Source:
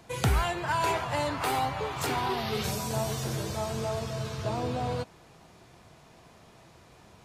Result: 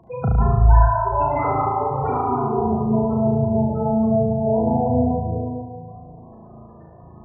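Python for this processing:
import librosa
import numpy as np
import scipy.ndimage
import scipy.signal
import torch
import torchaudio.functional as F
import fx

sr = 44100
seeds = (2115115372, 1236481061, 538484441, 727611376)

p1 = fx.peak_eq(x, sr, hz=140.0, db=-15.0, octaves=1.5, at=(0.53, 0.98))
p2 = fx.rev_plate(p1, sr, seeds[0], rt60_s=2.2, hf_ratio=0.35, predelay_ms=115, drr_db=-3.0)
p3 = fx.spec_gate(p2, sr, threshold_db=-10, keep='strong')
p4 = fx.high_shelf(p3, sr, hz=3800.0, db=-7.5)
p5 = p4 + fx.room_flutter(p4, sr, wall_m=6.2, rt60_s=1.1, dry=0)
y = p5 * librosa.db_to_amplitude(4.0)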